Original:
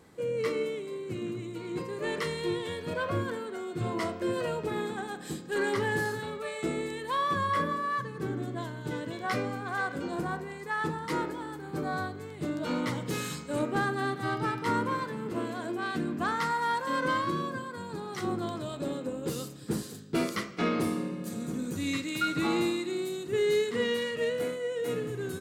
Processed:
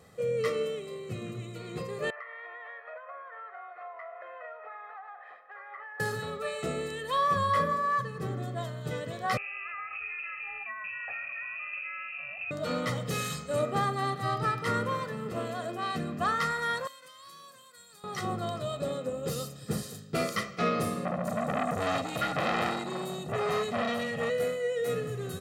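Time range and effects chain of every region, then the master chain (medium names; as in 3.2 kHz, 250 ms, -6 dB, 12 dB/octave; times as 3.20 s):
2.10–6.00 s: Chebyshev band-pass 670–2100 Hz, order 3 + compression 12:1, threshold -41 dBFS
9.37–12.51 s: compression 10:1, threshold -37 dBFS + frequency inversion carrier 2.8 kHz
16.87–18.04 s: pre-emphasis filter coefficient 0.97 + compression 12:1, threshold -46 dBFS
21.05–24.30 s: resonant low shelf 350 Hz +8 dB, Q 1.5 + transformer saturation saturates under 1.8 kHz
whole clip: high-pass 62 Hz; comb 1.6 ms, depth 70%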